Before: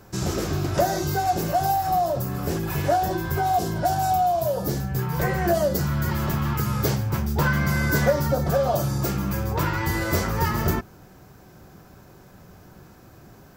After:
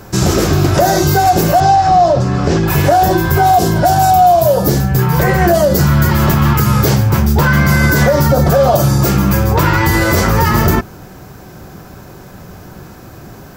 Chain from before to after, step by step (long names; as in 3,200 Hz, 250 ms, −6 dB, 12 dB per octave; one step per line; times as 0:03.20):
0:01.60–0:02.68: low-pass filter 6,300 Hz 24 dB per octave
boost into a limiter +15 dB
level −1 dB